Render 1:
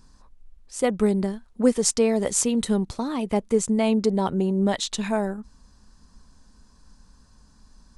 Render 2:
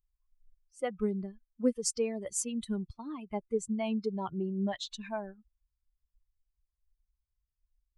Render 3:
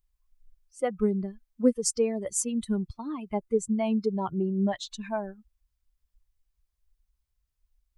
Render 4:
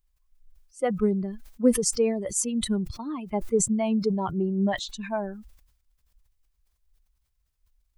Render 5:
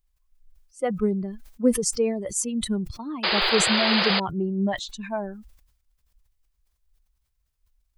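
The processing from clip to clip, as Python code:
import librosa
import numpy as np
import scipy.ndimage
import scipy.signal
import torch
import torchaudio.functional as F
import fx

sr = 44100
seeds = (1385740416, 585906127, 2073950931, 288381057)

y1 = fx.bin_expand(x, sr, power=2.0)
y1 = F.gain(torch.from_numpy(y1), -7.5).numpy()
y2 = fx.dynamic_eq(y1, sr, hz=3200.0, q=0.85, threshold_db=-54.0, ratio=4.0, max_db=-6)
y2 = F.gain(torch.from_numpy(y2), 6.0).numpy()
y3 = fx.sustainer(y2, sr, db_per_s=70.0)
y3 = F.gain(torch.from_numpy(y3), 1.5).numpy()
y4 = fx.spec_paint(y3, sr, seeds[0], shape='noise', start_s=3.23, length_s=0.97, low_hz=330.0, high_hz=5000.0, level_db=-23.0)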